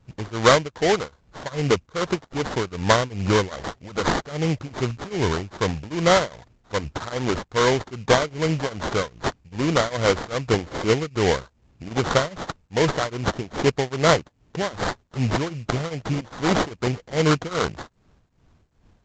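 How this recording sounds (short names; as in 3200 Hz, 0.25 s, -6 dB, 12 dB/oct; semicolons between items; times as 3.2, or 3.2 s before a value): aliases and images of a low sample rate 2600 Hz, jitter 20%; tremolo triangle 2.5 Hz, depth 95%; µ-law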